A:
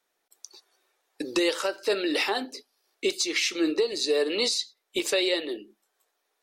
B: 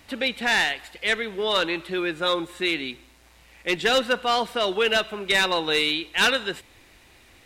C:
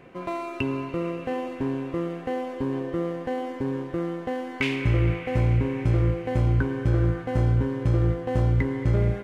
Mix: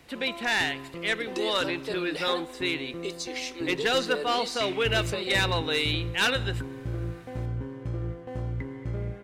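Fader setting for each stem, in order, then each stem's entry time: −9.0, −4.5, −10.5 decibels; 0.00, 0.00, 0.00 seconds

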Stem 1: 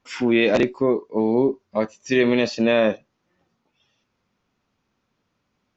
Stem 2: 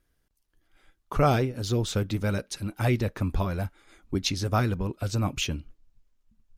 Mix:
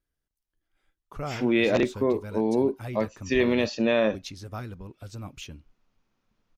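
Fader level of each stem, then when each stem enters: −4.5, −12.0 decibels; 1.20, 0.00 seconds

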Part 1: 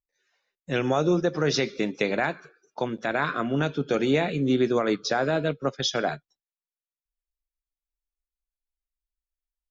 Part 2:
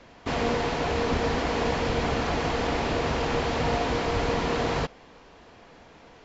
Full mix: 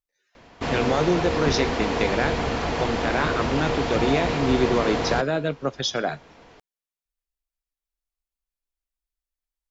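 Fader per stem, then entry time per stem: +0.5, +1.0 decibels; 0.00, 0.35 seconds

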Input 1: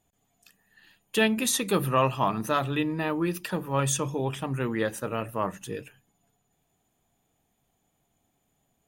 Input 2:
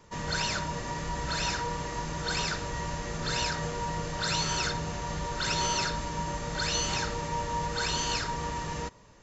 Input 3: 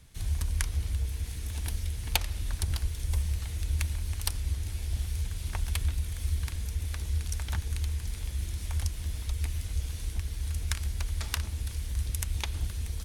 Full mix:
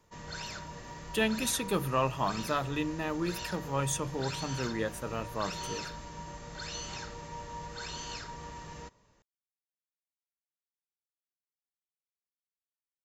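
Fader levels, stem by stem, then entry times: −5.5 dB, −10.5 dB, muted; 0.00 s, 0.00 s, muted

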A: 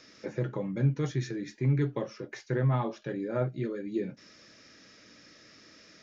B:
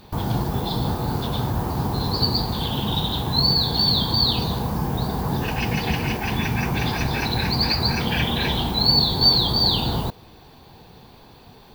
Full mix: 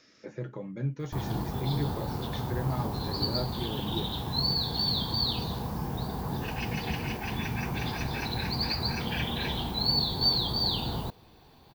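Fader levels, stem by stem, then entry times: −5.5, −9.0 decibels; 0.00, 1.00 seconds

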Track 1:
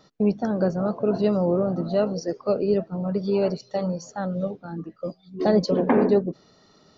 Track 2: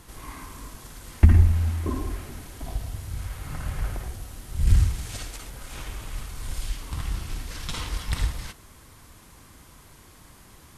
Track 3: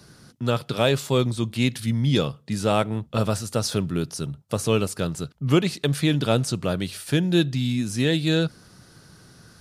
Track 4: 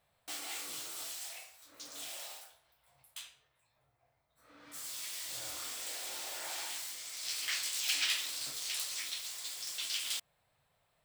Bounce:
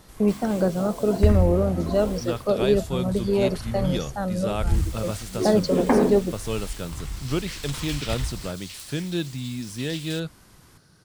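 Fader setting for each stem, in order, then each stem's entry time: +0.5, −4.0, −7.5, −4.0 decibels; 0.00, 0.00, 1.80, 0.00 seconds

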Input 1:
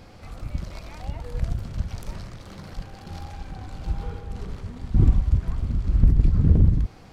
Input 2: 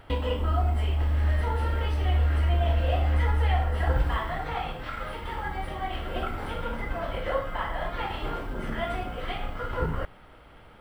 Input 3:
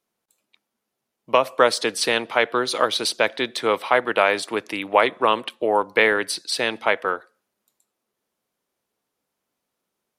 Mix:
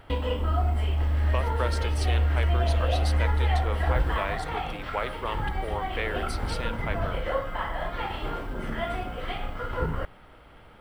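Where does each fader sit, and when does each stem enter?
−16.0, 0.0, −14.5 decibels; 0.40, 0.00, 0.00 seconds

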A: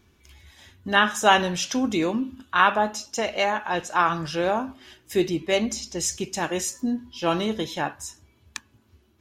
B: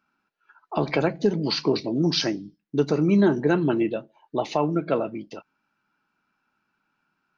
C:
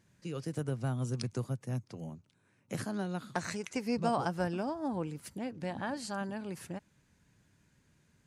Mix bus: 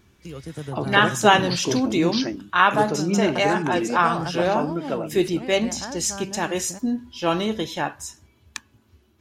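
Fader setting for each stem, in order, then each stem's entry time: +1.5, −3.5, +2.0 decibels; 0.00, 0.00, 0.00 seconds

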